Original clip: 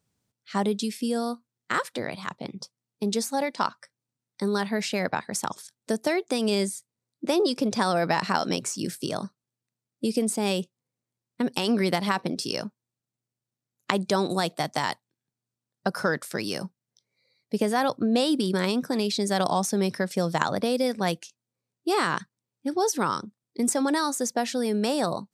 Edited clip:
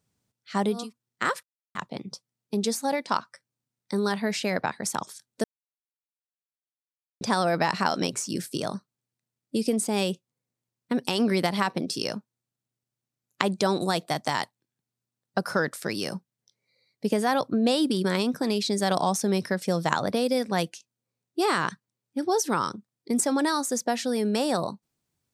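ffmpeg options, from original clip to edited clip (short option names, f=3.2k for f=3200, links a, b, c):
-filter_complex "[0:a]asplit=6[a][b][c][d][e][f];[a]atrim=end=0.93[g];[b]atrim=start=1.18:end=1.92,asetpts=PTS-STARTPTS,afade=t=out:st=0.736:d=0.004:c=hsin[h];[c]atrim=start=1.92:end=2.24,asetpts=PTS-STARTPTS,volume=0[i];[d]atrim=start=2.24:end=5.93,asetpts=PTS-STARTPTS,afade=t=in:d=0.004:c=hsin,afade=t=out:st=3.686:d=0.004:c=hsin[j];[e]atrim=start=5.93:end=7.7,asetpts=PTS-STARTPTS,volume=0[k];[f]atrim=start=7.7,asetpts=PTS-STARTPTS,afade=t=in:d=0.004:c=hsin[l];[h][i][j][k][l]concat=n=5:v=0:a=1[m];[g][m]acrossfade=d=0.24:c1=tri:c2=tri"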